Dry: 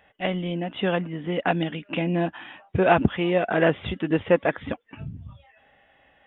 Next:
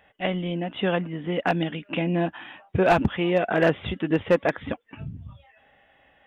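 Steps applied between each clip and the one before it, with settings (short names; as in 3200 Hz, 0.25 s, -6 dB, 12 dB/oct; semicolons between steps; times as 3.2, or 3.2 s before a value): overloaded stage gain 11.5 dB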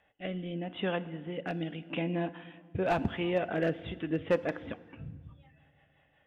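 rotary speaker horn 0.85 Hz, later 5.5 Hz, at 3.64; FDN reverb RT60 1.6 s, low-frequency decay 1.45×, high-frequency decay 0.8×, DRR 14.5 dB; gain -7 dB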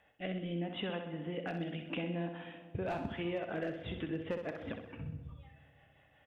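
compressor 5:1, threshold -37 dBFS, peak gain reduction 14 dB; on a send: feedback echo 64 ms, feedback 50%, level -7.5 dB; on the sum: gain +1 dB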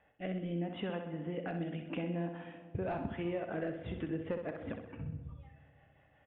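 air absorption 430 m; gain +1.5 dB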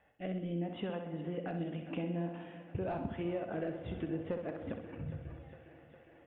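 thinning echo 0.408 s, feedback 77%, high-pass 170 Hz, level -16 dB; dynamic EQ 1900 Hz, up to -4 dB, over -55 dBFS, Q 1.1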